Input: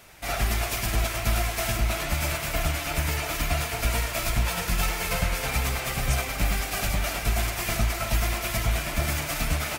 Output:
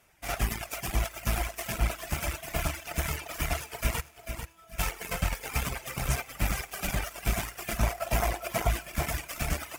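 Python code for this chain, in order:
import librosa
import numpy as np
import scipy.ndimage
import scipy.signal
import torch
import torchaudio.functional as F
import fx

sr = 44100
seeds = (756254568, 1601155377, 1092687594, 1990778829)

y = fx.rider(x, sr, range_db=4, speed_s=0.5)
y = fx.echo_thinned(y, sr, ms=397, feedback_pct=69, hz=220.0, wet_db=-8.5)
y = fx.cheby_harmonics(y, sr, harmonics=(3, 7), levels_db=(-33, -20), full_scale_db=-12.5)
y = fx.comb_fb(y, sr, f0_hz=330.0, decay_s=1.0, harmonics='all', damping=0.0, mix_pct=90, at=(4.0, 4.78), fade=0.02)
y = fx.peak_eq(y, sr, hz=650.0, db=9.0, octaves=1.4, at=(7.83, 8.68))
y = fx.echo_feedback(y, sr, ms=444, feedback_pct=28, wet_db=-7.5)
y = fx.dereverb_blind(y, sr, rt60_s=1.5)
y = fx.peak_eq(y, sr, hz=4100.0, db=-6.5, octaves=0.4)
y = y * librosa.db_to_amplitude(-2.5)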